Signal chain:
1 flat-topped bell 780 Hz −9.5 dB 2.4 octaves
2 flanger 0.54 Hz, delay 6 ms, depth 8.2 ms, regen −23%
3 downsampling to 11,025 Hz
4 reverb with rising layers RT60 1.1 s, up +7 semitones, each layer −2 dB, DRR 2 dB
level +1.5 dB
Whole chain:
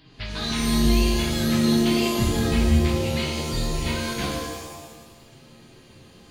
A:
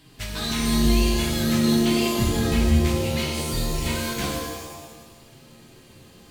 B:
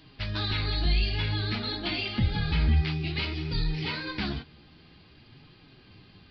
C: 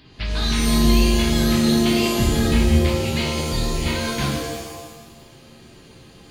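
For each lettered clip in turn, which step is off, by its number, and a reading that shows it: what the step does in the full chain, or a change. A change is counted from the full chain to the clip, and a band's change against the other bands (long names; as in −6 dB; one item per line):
3, 8 kHz band +2.0 dB
4, 500 Hz band −9.5 dB
2, change in momentary loudness spread −1 LU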